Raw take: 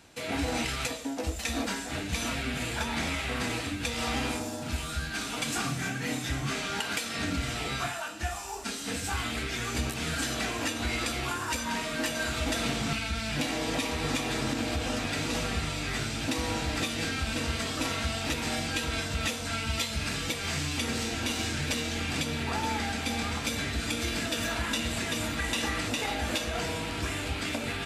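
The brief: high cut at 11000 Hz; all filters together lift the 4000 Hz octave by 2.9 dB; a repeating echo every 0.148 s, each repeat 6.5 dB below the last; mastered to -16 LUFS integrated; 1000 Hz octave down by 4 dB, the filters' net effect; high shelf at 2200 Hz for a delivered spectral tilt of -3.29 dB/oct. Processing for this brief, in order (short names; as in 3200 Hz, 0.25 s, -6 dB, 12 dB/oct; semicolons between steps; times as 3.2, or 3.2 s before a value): LPF 11000 Hz; bell 1000 Hz -5 dB; high shelf 2200 Hz -4 dB; bell 4000 Hz +7.5 dB; feedback echo 0.148 s, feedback 47%, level -6.5 dB; gain +13.5 dB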